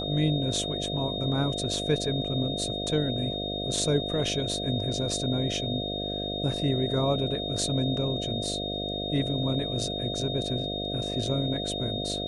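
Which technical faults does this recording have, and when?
mains buzz 50 Hz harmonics 14 −34 dBFS
whistle 3,700 Hz −33 dBFS

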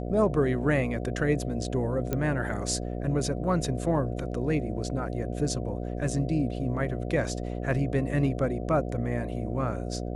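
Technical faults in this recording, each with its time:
mains buzz 60 Hz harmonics 12 −33 dBFS
0:02.13: click −14 dBFS

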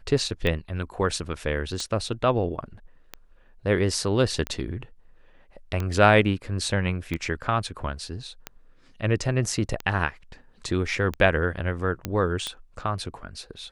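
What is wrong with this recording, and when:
scratch tick 45 rpm −15 dBFS
0:12.05: click −13 dBFS

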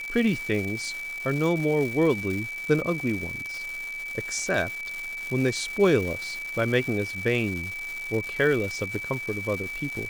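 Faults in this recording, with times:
surface crackle 420 per second −31 dBFS
whistle 2,300 Hz −32 dBFS

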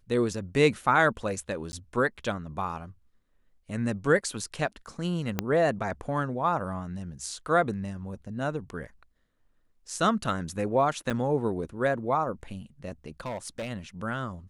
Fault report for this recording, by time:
0:01.72–0:01.73: drop-out 10 ms
0:05.39: click −11 dBFS
0:11.10–0:11.11: drop-out 6.8 ms
0:13.20–0:13.68: clipping −30 dBFS

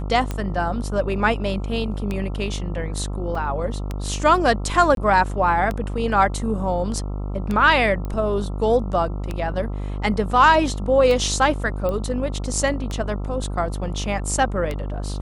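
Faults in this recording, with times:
mains buzz 50 Hz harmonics 27 −27 dBFS
scratch tick 33 1/3 rpm −13 dBFS
0:03.35: drop-out 3.4 ms
0:04.95–0:04.97: drop-out 22 ms
0:08.05: click −18 dBFS
0:11.89: click −15 dBFS

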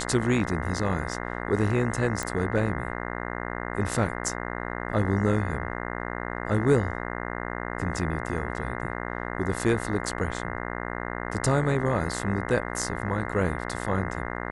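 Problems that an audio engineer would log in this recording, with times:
mains buzz 60 Hz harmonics 35 −33 dBFS
0:02.23: click −15 dBFS

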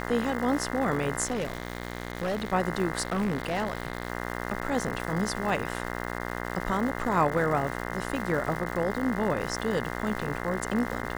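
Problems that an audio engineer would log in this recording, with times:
mains buzz 60 Hz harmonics 35 −34 dBFS
surface crackle 440 per second −35 dBFS
0:01.24–0:02.53: clipping −25.5 dBFS
0:03.01–0:04.10: clipping −23 dBFS

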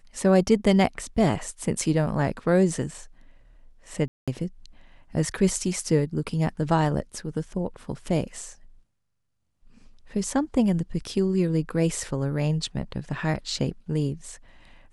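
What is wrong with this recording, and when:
0:04.08–0:04.28: drop-out 196 ms

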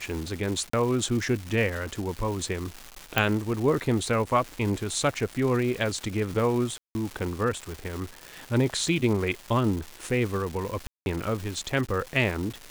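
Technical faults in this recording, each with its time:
surface crackle 500 per second −32 dBFS
0:00.70–0:00.73: drop-out 34 ms
0:03.18: click −7 dBFS
0:06.78–0:06.95: drop-out 170 ms
0:10.87–0:11.06: drop-out 191 ms

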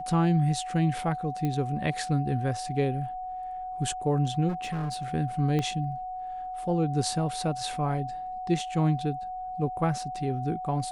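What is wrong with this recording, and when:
whistle 740 Hz −33 dBFS
0:01.45: click −18 dBFS
0:04.48–0:05.05: clipping −27.5 dBFS
0:05.59: click −17 dBFS

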